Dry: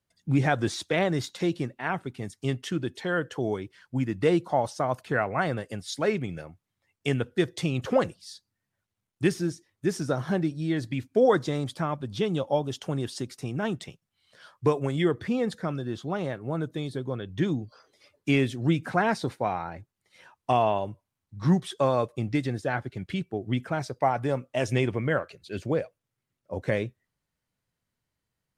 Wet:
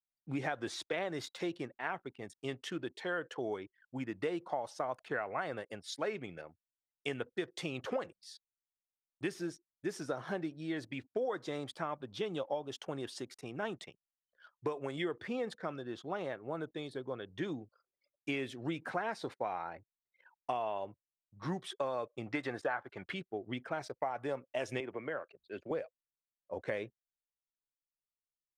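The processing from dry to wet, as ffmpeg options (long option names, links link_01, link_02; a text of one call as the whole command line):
ffmpeg -i in.wav -filter_complex "[0:a]asettb=1/sr,asplit=3[link_01][link_02][link_03];[link_01]atrim=end=22.264[link_04];[link_02]atrim=start=22.26:end=23.14,asetpts=PTS-STARTPTS,afade=type=in:duration=0.004:curve=qsin,afade=type=out:start_time=0.876:duration=0.004:curve=qsin,equalizer=frequency=1100:width_type=o:width=1.9:gain=13[link_05];[link_03]atrim=start=23.136[link_06];[link_04][link_05]acrossfade=duration=0.004:curve1=hsin:curve2=qsin[link_07];[link_07][link_06]acrossfade=duration=0.004:curve1=qsin:curve2=hsin,asettb=1/sr,asplit=3[link_08][link_09][link_10];[link_08]atrim=end=24.804[link_11];[link_09]atrim=start=24.8:end=25.71,asetpts=PTS-STARTPTS,afade=type=in:duration=0.004:curve=qsin,afade=type=out:start_time=0.906:duration=0.004:curve=qsin,acrossover=split=190|2300[link_12][link_13][link_14];[link_12]acompressor=threshold=-44dB:ratio=4[link_15];[link_13]acompressor=threshold=-29dB:ratio=4[link_16];[link_14]acompressor=threshold=-55dB:ratio=4[link_17];[link_15][link_16][link_17]amix=inputs=3:normalize=0[link_18];[link_10]atrim=start=25.706[link_19];[link_11][link_18]acrossfade=duration=0.004:curve1=hsin:curve2=qsin[link_20];[link_20][link_19]acrossfade=duration=0.004:curve1=qsin:curve2=hsin,anlmdn=0.01,bass=frequency=250:gain=-14,treble=frequency=4000:gain=-5,acompressor=threshold=-27dB:ratio=10,volume=-4.5dB" out.wav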